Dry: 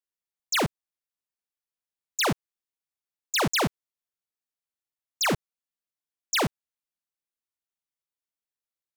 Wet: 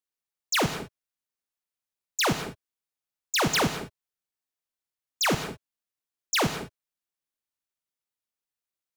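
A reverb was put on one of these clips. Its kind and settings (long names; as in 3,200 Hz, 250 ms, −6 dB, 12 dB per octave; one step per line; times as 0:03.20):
reverb whose tail is shaped and stops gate 230 ms flat, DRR 8 dB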